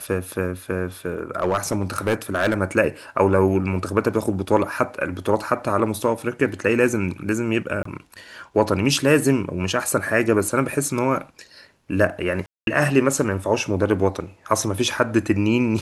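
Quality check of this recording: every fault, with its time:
1.36–2.6 clipped -14.5 dBFS
7.83–7.85 gap 24 ms
12.46–12.67 gap 0.212 s

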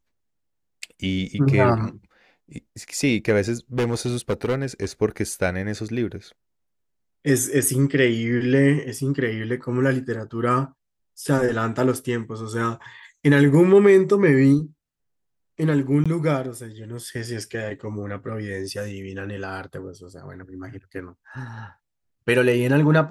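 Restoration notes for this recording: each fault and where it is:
3.78–4.85 clipped -18 dBFS
16.04–16.06 gap 16 ms

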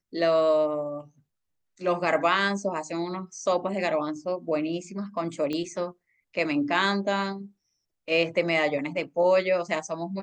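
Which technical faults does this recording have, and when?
5.53 pop -19 dBFS

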